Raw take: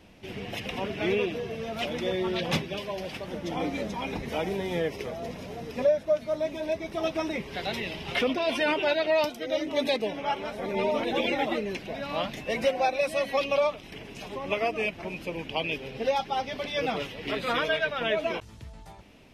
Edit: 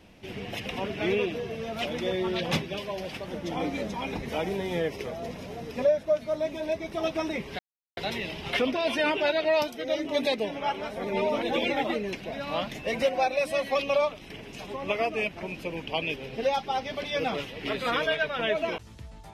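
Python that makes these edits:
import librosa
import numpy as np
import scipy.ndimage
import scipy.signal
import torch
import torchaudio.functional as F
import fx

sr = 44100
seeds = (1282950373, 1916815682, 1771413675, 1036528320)

y = fx.edit(x, sr, fx.insert_silence(at_s=7.59, length_s=0.38), tone=tone)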